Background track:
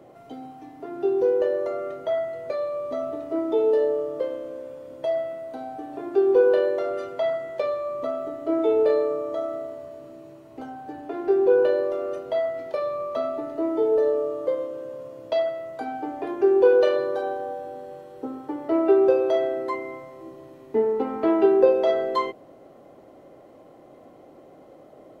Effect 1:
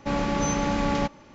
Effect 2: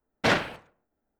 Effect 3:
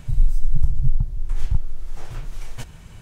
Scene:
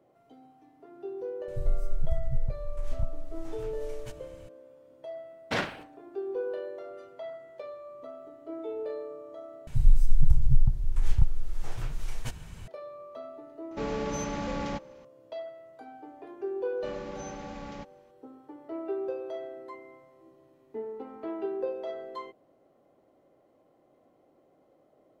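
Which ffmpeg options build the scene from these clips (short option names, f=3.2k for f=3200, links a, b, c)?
-filter_complex "[3:a]asplit=2[a][b];[1:a]asplit=2[c][d];[0:a]volume=-15.5dB[e];[c]asoftclip=type=tanh:threshold=-17dB[f];[e]asplit=2[g][h];[g]atrim=end=9.674[i];[b]atrim=end=3.01,asetpts=PTS-STARTPTS,volume=-2dB[j];[h]atrim=start=12.676[k];[a]atrim=end=3.01,asetpts=PTS-STARTPTS,volume=-10dB,afade=t=in:d=0.004:c=hsin,afade=t=out:st=3.006:d=0.004:c=hsin,adelay=1480[l];[2:a]atrim=end=1.19,asetpts=PTS-STARTPTS,volume=-7dB,afade=t=in:d=0.004:c=hsin,afade=t=out:st=1.186:d=0.004:c=hsin,adelay=5270[m];[f]atrim=end=1.34,asetpts=PTS-STARTPTS,volume=-7.5dB,afade=t=in:d=0.004:c=hsin,afade=t=out:st=1.336:d=0.004:c=hsin,adelay=13710[n];[d]atrim=end=1.34,asetpts=PTS-STARTPTS,volume=-17dB,afade=t=in:d=0.004:c=hsin,afade=t=out:st=1.336:d=0.004:c=hsin,adelay=16770[o];[i][j]acrossfade=d=0.004:c1=hsin:c2=hsin[p];[p][k]acrossfade=d=0.004:c1=hsin:c2=hsin[q];[q][l][m][n][o]amix=inputs=5:normalize=0"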